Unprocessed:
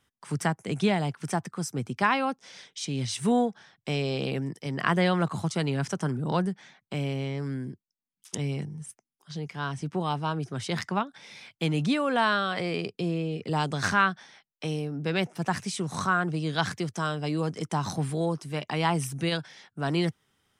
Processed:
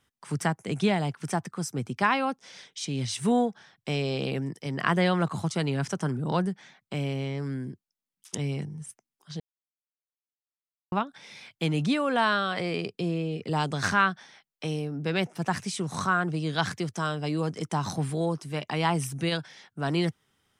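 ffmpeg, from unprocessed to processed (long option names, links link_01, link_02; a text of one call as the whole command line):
ffmpeg -i in.wav -filter_complex "[0:a]asplit=3[link_01][link_02][link_03];[link_01]atrim=end=9.4,asetpts=PTS-STARTPTS,afade=type=out:start_time=9.396:duration=0.004:curve=hsin[link_04];[link_02]atrim=start=9.4:end=10.92,asetpts=PTS-STARTPTS,volume=0[link_05];[link_03]atrim=start=10.92,asetpts=PTS-STARTPTS,afade=type=in:duration=0.004:curve=hsin[link_06];[link_04][link_05][link_06]concat=n=3:v=0:a=1" out.wav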